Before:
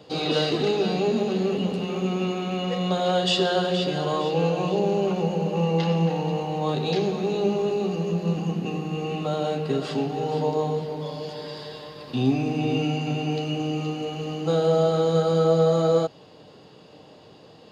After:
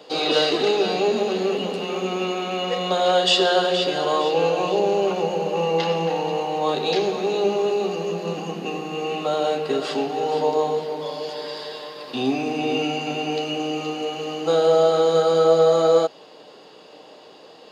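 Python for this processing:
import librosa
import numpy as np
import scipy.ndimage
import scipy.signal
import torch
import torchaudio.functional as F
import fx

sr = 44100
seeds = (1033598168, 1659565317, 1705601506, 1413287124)

y = scipy.signal.sosfilt(scipy.signal.butter(2, 370.0, 'highpass', fs=sr, output='sos'), x)
y = y * 10.0 ** (5.5 / 20.0)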